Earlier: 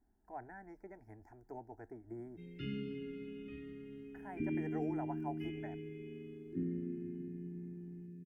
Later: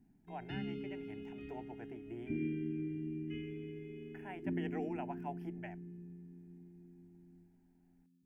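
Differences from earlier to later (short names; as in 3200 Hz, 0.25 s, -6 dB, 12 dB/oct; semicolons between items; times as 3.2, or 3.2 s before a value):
speech: remove Butterworth band-stop 2900 Hz, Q 0.97; background: entry -2.10 s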